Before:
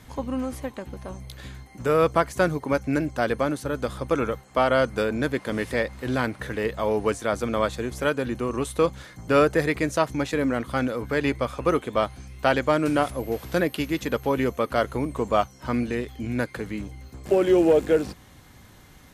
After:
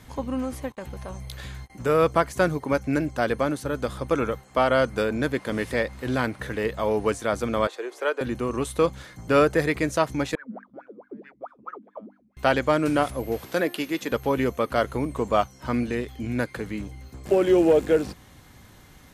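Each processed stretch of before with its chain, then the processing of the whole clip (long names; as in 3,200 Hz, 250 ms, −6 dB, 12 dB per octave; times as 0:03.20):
0:00.72–0:01.70: noise gate −44 dBFS, range −52 dB + parametric band 280 Hz −7 dB 1 octave + envelope flattener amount 50%
0:07.67–0:08.21: Chebyshev high-pass filter 370 Hz, order 4 + high-shelf EQ 4,900 Hz −10.5 dB
0:10.35–0:12.37: LFO wah 4.6 Hz 200–1,700 Hz, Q 21 + mains-hum notches 50/100/150/200/250/300 Hz
0:13.45–0:14.12: high-pass filter 240 Hz + hum removal 349.5 Hz, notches 39
whole clip: no processing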